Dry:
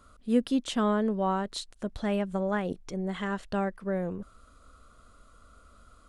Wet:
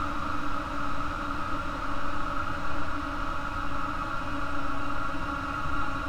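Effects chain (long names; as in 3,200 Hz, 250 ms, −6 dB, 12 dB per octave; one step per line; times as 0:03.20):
Butterworth low-pass 2,600 Hz 36 dB per octave
linear-prediction vocoder at 8 kHz pitch kept
in parallel at +2 dB: compressor whose output falls as the input rises −34 dBFS, ratio −0.5
on the sum: leveller curve on the samples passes 5
parametric band 390 Hz −14.5 dB 0.29 octaves
on a send: feedback delay with all-pass diffusion 484 ms, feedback 42%, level −14 dB
on the sum: extreme stretch with random phases 16×, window 1.00 s, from 0:04.94
level −3 dB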